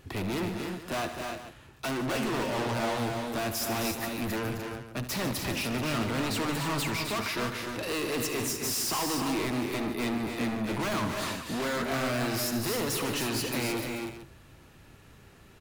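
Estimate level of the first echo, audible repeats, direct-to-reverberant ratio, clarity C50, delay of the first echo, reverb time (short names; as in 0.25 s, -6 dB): -12.0 dB, 5, none, none, 73 ms, none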